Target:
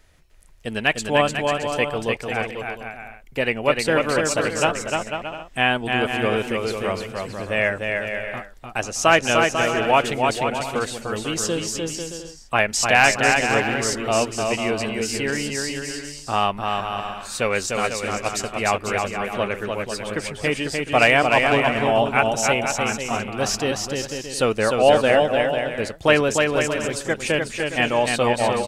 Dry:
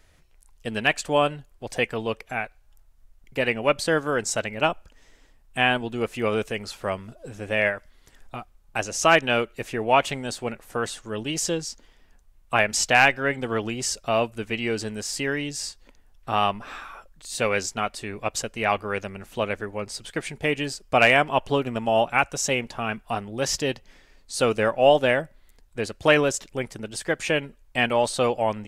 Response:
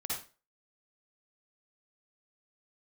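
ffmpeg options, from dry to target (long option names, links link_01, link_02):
-af "aecho=1:1:300|495|621.8|704.1|757.7:0.631|0.398|0.251|0.158|0.1,volume=1.5dB"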